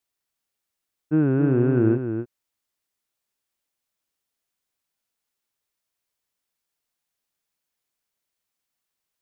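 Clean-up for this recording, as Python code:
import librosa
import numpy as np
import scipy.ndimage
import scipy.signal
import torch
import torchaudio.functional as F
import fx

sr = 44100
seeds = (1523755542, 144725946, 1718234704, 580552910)

y = fx.fix_echo_inverse(x, sr, delay_ms=270, level_db=-8.0)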